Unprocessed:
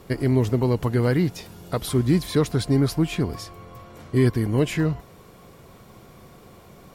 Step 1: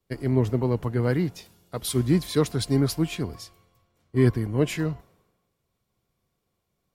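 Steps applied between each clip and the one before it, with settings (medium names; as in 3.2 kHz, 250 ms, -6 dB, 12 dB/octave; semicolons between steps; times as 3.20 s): three bands expanded up and down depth 100%; trim -3.5 dB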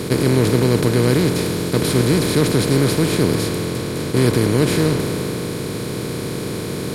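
spectral levelling over time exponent 0.2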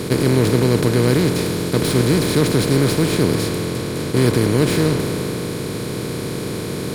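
tracing distortion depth 0.023 ms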